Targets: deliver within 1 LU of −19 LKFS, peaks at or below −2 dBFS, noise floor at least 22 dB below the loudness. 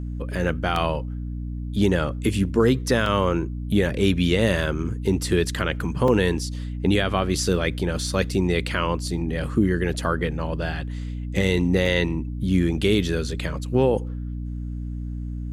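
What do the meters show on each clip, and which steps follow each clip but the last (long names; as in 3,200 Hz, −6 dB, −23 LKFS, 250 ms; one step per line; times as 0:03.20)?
number of dropouts 4; longest dropout 2.5 ms; mains hum 60 Hz; hum harmonics up to 300 Hz; level of the hum −27 dBFS; integrated loudness −23.5 LKFS; sample peak −7.5 dBFS; target loudness −19.0 LKFS
→ repair the gap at 0:00.76/0:03.06/0:06.08/0:11.86, 2.5 ms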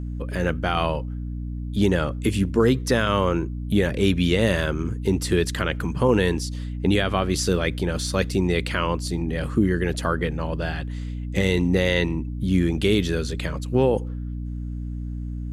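number of dropouts 0; mains hum 60 Hz; hum harmonics up to 300 Hz; level of the hum −27 dBFS
→ mains-hum notches 60/120/180/240/300 Hz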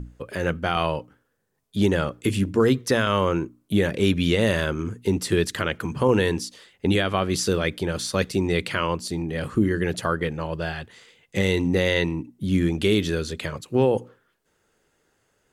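mains hum none found; integrated loudness −24.0 LKFS; sample peak −7.5 dBFS; target loudness −19.0 LKFS
→ level +5 dB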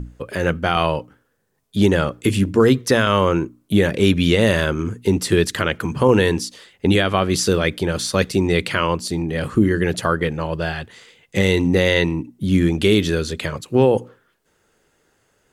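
integrated loudness −19.0 LKFS; sample peak −2.5 dBFS; background noise floor −65 dBFS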